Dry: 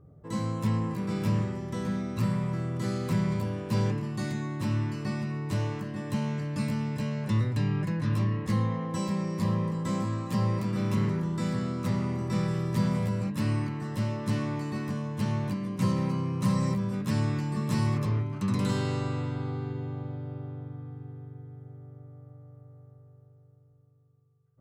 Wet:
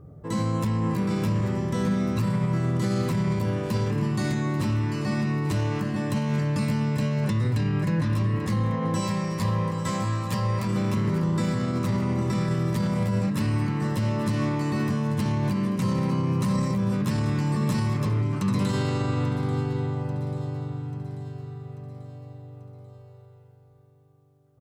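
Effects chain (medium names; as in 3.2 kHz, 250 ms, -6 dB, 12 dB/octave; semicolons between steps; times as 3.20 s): 9.00–10.67 s: peaking EQ 270 Hz -9 dB 1.6 oct; peak limiter -25.5 dBFS, peak gain reduction 10.5 dB; feedback delay 839 ms, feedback 53%, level -14.5 dB; trim +8 dB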